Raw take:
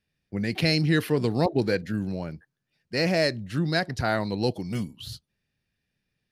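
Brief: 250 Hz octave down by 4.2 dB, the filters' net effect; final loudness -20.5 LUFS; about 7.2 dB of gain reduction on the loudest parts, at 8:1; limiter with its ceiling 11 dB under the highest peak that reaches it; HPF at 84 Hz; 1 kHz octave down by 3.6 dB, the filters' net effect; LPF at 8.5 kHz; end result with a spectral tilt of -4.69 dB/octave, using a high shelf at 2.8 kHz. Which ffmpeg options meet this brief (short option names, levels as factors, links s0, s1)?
-af "highpass=84,lowpass=8500,equalizer=f=250:t=o:g=-6,equalizer=f=1000:t=o:g=-6,highshelf=f=2800:g=5,acompressor=threshold=0.0447:ratio=8,volume=7.08,alimiter=limit=0.335:level=0:latency=1"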